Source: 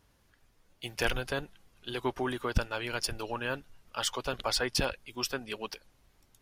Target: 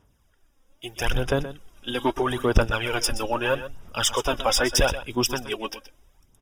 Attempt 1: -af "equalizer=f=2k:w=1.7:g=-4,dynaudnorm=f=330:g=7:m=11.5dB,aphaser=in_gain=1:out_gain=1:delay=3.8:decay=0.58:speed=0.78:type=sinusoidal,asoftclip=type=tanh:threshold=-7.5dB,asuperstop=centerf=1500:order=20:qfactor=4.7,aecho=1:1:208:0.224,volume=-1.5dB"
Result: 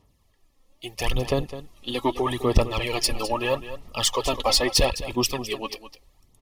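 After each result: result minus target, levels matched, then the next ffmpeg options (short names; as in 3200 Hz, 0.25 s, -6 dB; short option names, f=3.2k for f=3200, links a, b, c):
echo 83 ms late; 2000 Hz band -4.0 dB
-af "equalizer=f=2k:w=1.7:g=-4,dynaudnorm=f=330:g=7:m=11.5dB,aphaser=in_gain=1:out_gain=1:delay=3.8:decay=0.58:speed=0.78:type=sinusoidal,asoftclip=type=tanh:threshold=-7.5dB,asuperstop=centerf=1500:order=20:qfactor=4.7,aecho=1:1:125:0.224,volume=-1.5dB"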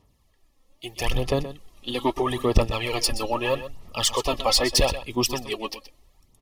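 2000 Hz band -4.0 dB
-af "equalizer=f=2k:w=1.7:g=-4,dynaudnorm=f=330:g=7:m=11.5dB,aphaser=in_gain=1:out_gain=1:delay=3.8:decay=0.58:speed=0.78:type=sinusoidal,asoftclip=type=tanh:threshold=-7.5dB,asuperstop=centerf=4300:order=20:qfactor=4.7,aecho=1:1:125:0.224,volume=-1.5dB"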